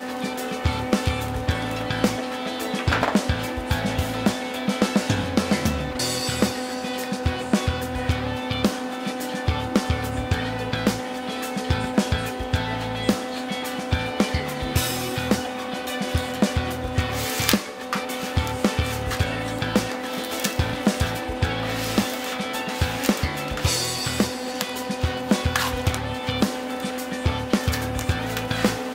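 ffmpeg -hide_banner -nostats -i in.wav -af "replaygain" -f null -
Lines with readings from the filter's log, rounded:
track_gain = +4.3 dB
track_peak = 0.497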